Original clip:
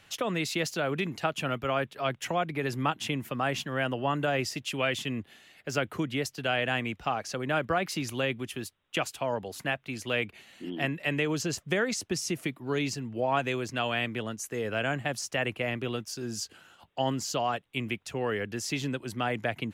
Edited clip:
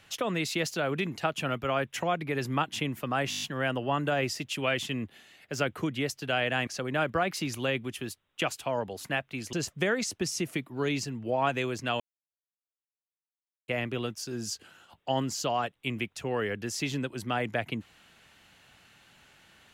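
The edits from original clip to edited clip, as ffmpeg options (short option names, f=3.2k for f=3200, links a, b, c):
-filter_complex "[0:a]asplit=12[a][b][c][d][e][f][g][h][i][j][k][l];[a]atrim=end=1.912[m];[b]atrim=start=2.188:end=3.602[n];[c]atrim=start=3.578:end=3.602[o];[d]atrim=start=3.578:end=3.602[p];[e]atrim=start=3.578:end=3.602[q];[f]atrim=start=3.578:end=3.602[r];[g]atrim=start=3.578:end=3.602[s];[h]atrim=start=3.578:end=6.832[t];[i]atrim=start=7.218:end=10.082[u];[j]atrim=start=11.428:end=13.9,asetpts=PTS-STARTPTS,afade=t=out:st=2.468:d=0.004:c=hsin[v];[k]atrim=start=13.9:end=15.58,asetpts=PTS-STARTPTS,volume=0[w];[l]atrim=start=15.58,asetpts=PTS-STARTPTS,afade=t=in:d=0.004:c=hsin[x];[m][n]acrossfade=d=0.004:c1=hsin:c2=hsin[y];[y][o]acrossfade=d=0.004:c1=hsin:c2=hsin[z];[z][p]acrossfade=d=0.004:c1=hsin:c2=hsin[aa];[aa][q]acrossfade=d=0.004:c1=hsin:c2=hsin[ab];[ab][r]acrossfade=d=0.004:c1=hsin:c2=hsin[ac];[ac][s]acrossfade=d=0.004:c1=hsin:c2=hsin[ad];[ad][t]acrossfade=d=0.004:c1=hsin:c2=hsin[ae];[ae][u]acrossfade=d=0.004:c1=hsin:c2=hsin[af];[v][w][x]concat=n=3:v=0:a=1[ag];[af][ag]acrossfade=d=0.004:c1=hsin:c2=hsin"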